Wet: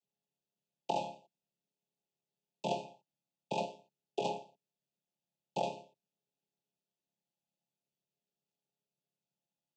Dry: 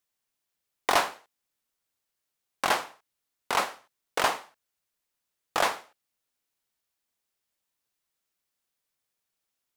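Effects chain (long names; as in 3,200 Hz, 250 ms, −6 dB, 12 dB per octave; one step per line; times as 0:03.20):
channel vocoder with a chord as carrier major triad, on C#3
Chebyshev band-stop filter 910–2,500 Hz, order 5
downward compressor, threshold −27 dBFS, peak gain reduction 7.5 dB
level −3 dB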